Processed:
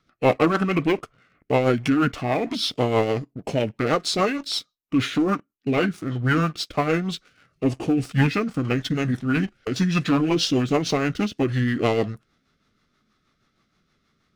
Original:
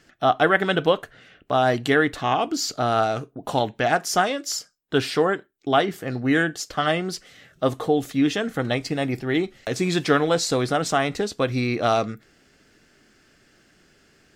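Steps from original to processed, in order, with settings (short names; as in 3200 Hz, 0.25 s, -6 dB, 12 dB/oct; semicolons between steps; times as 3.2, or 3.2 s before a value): sample leveller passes 2; rotary speaker horn 6.3 Hz; formant shift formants -5 st; gain -4 dB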